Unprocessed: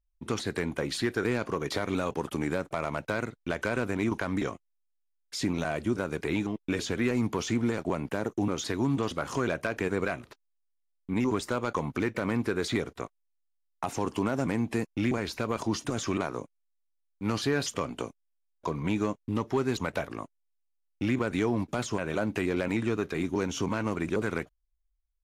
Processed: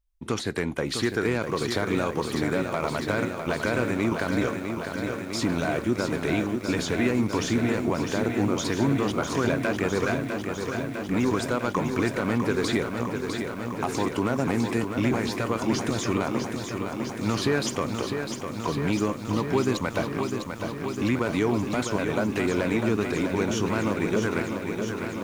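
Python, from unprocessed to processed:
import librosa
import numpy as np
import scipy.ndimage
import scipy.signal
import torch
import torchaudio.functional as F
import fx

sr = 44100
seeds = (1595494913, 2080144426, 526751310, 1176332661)

y = fx.echo_crushed(x, sr, ms=653, feedback_pct=80, bits=9, wet_db=-6.5)
y = F.gain(torch.from_numpy(y), 3.0).numpy()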